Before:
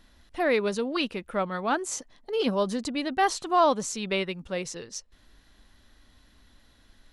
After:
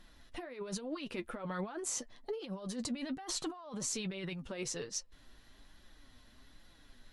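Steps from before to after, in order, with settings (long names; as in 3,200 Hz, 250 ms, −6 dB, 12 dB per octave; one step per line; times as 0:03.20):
compressor whose output falls as the input rises −34 dBFS, ratio −1
flanger 1.2 Hz, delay 5.4 ms, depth 3.5 ms, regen +38%
level −3 dB
Ogg Vorbis 128 kbit/s 44,100 Hz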